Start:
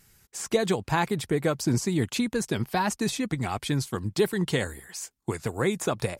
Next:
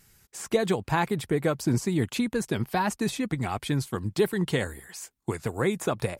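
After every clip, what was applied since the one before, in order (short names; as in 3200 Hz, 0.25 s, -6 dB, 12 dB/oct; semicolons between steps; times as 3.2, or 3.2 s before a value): dynamic EQ 5800 Hz, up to -5 dB, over -48 dBFS, Q 0.97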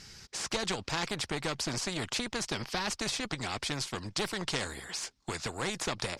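tube stage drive 15 dB, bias 0.65; synth low-pass 5100 Hz, resonance Q 2.9; spectral compressor 2:1; gain -2.5 dB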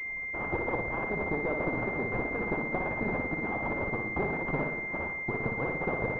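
median-filter separation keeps percussive; flutter echo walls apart 10 m, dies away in 0.86 s; pulse-width modulation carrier 2100 Hz; gain +4 dB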